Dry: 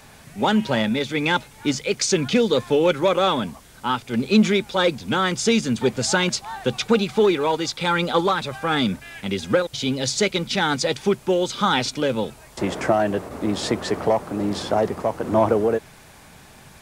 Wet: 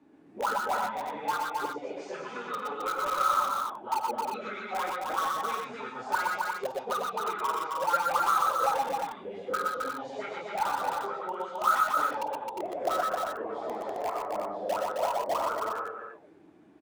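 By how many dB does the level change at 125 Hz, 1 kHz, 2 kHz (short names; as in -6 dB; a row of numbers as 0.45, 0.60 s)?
under -25 dB, -1.5 dB, -9.0 dB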